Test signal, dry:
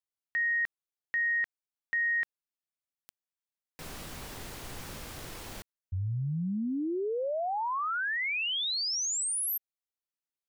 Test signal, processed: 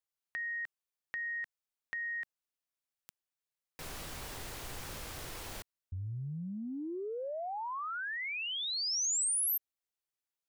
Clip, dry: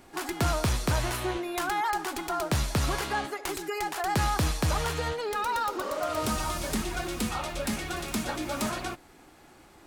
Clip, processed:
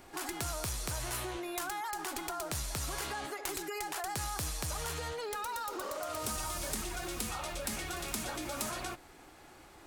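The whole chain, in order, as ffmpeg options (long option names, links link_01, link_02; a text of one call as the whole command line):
ffmpeg -i in.wav -filter_complex "[0:a]equalizer=frequency=210:width_type=o:width=1.2:gain=-5,acrossover=split=5800[link_01][link_02];[link_01]acompressor=threshold=-38dB:ratio=6:attack=9.5:release=37:knee=6[link_03];[link_03][link_02]amix=inputs=2:normalize=0" out.wav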